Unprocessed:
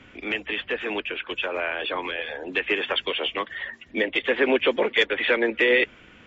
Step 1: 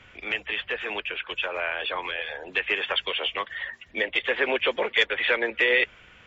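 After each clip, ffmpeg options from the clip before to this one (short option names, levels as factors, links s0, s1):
-af "equalizer=f=270:w=1.2:g=-12.5"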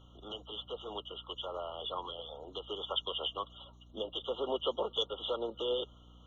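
-af "aeval=exprs='val(0)+0.00355*(sin(2*PI*60*n/s)+sin(2*PI*2*60*n/s)/2+sin(2*PI*3*60*n/s)/3+sin(2*PI*4*60*n/s)/4+sin(2*PI*5*60*n/s)/5)':c=same,afftfilt=real='re*eq(mod(floor(b*sr/1024/1400),2),0)':imag='im*eq(mod(floor(b*sr/1024/1400),2),0)':win_size=1024:overlap=0.75,volume=0.422"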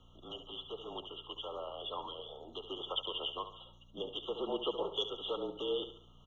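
-af "afreqshift=-36,aecho=1:1:70|140|210|280:0.299|0.119|0.0478|0.0191,volume=0.75"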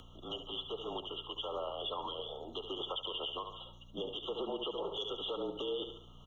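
-af "alimiter=level_in=3.16:limit=0.0631:level=0:latency=1:release=87,volume=0.316,acompressor=mode=upward:threshold=0.00158:ratio=2.5,volume=1.68"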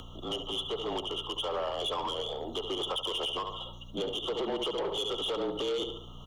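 -af "asoftclip=type=tanh:threshold=0.0158,volume=2.82"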